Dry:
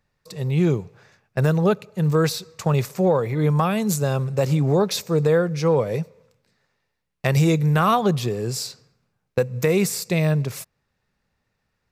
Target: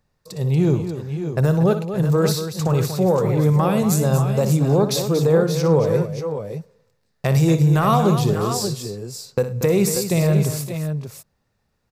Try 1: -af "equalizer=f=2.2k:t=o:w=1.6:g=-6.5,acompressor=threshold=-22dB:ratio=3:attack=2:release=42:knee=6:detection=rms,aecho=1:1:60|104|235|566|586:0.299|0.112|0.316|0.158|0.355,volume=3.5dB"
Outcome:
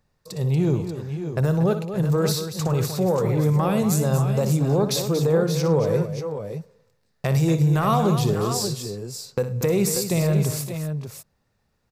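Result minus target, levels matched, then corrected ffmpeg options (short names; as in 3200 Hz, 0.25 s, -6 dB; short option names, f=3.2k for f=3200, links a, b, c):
compressor: peak gain reduction +4 dB
-af "equalizer=f=2.2k:t=o:w=1.6:g=-6.5,acompressor=threshold=-15.5dB:ratio=3:attack=2:release=42:knee=6:detection=rms,aecho=1:1:60|104|235|566|586:0.299|0.112|0.316|0.158|0.355,volume=3.5dB"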